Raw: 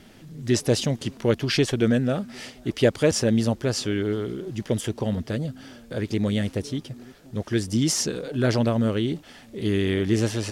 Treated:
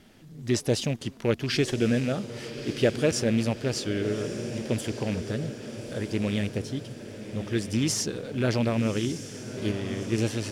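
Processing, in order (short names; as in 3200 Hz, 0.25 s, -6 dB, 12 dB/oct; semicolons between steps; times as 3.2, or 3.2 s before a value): rattling part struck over -23 dBFS, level -24 dBFS; 9.71–10.18 gate -19 dBFS, range -7 dB; in parallel at -12 dB: crossover distortion -41 dBFS; on the sum: diffused feedback echo 1.218 s, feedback 57%, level -10.5 dB; gain -5.5 dB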